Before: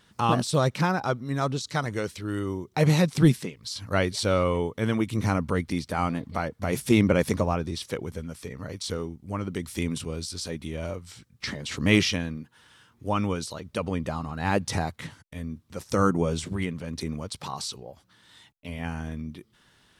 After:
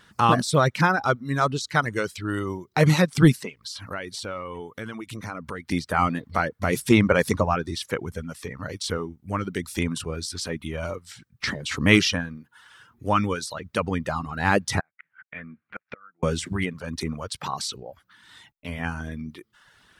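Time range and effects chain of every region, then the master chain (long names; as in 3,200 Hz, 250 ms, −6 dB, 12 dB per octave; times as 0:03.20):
0:03.62–0:05.70: low-shelf EQ 170 Hz −6 dB + downward compressor 4 to 1, threshold −35 dBFS
0:14.80–0:16.23: loudspeaker in its box 260–2,500 Hz, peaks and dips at 270 Hz −9 dB, 390 Hz −9 dB, 560 Hz −3 dB, 970 Hz −7 dB, 1,500 Hz +7 dB, 2,300 Hz +8 dB + gate with flip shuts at −27 dBFS, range −32 dB + hard clipping −25.5 dBFS
whole clip: reverb reduction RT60 0.7 s; parametric band 1,500 Hz +6.5 dB 1 octave; level +3 dB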